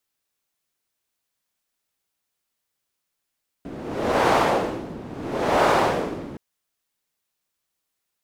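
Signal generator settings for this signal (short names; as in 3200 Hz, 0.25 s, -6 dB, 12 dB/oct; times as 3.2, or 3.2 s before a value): wind-like swept noise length 2.72 s, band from 270 Hz, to 740 Hz, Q 1.2, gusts 2, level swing 18 dB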